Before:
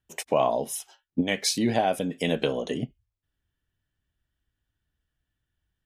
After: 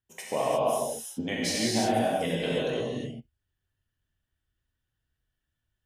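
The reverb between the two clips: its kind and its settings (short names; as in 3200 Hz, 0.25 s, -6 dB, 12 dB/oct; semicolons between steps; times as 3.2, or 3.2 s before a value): non-linear reverb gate 0.38 s flat, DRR -6.5 dB; gain -8.5 dB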